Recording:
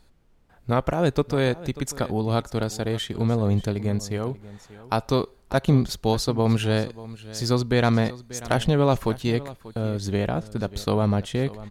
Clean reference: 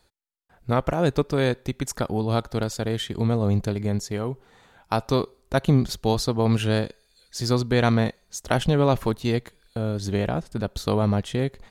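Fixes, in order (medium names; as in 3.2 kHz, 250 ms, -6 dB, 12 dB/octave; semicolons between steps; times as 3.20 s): clip repair -7.5 dBFS; expander -42 dBFS, range -21 dB; inverse comb 588 ms -17.5 dB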